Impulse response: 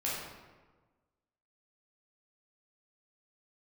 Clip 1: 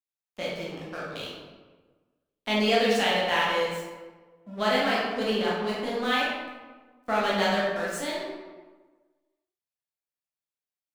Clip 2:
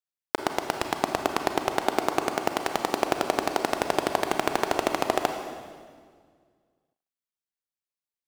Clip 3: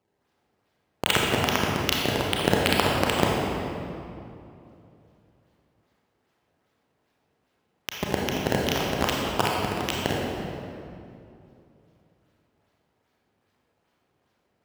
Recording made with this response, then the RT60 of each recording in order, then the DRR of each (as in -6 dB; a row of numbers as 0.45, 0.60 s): 1; 1.3, 1.9, 2.7 s; -7.0, 5.0, -3.0 dB